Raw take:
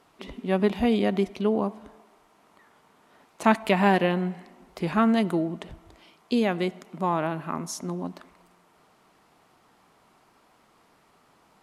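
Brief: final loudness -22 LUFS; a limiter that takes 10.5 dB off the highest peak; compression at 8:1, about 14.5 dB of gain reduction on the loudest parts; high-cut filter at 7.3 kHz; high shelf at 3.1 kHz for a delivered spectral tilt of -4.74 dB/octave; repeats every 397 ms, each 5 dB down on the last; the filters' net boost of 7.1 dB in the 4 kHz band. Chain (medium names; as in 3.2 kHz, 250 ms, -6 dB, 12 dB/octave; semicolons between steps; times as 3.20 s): low-pass 7.3 kHz; treble shelf 3.1 kHz +7.5 dB; peaking EQ 4 kHz +4.5 dB; compression 8:1, threshold -29 dBFS; peak limiter -25.5 dBFS; feedback delay 397 ms, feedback 56%, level -5 dB; trim +15 dB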